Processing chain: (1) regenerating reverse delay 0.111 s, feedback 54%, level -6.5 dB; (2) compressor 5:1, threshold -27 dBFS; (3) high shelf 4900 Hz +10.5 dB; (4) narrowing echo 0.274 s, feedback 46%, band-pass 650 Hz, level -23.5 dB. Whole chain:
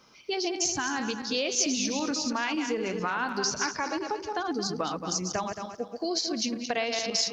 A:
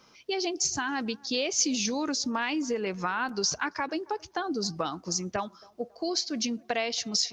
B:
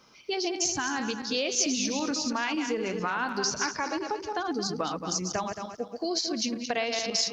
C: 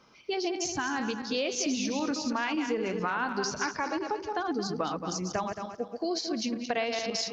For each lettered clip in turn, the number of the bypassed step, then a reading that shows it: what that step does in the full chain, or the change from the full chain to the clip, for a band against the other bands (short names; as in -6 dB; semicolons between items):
1, momentary loudness spread change +1 LU; 4, echo-to-direct -26.5 dB to none; 3, 8 kHz band -6.5 dB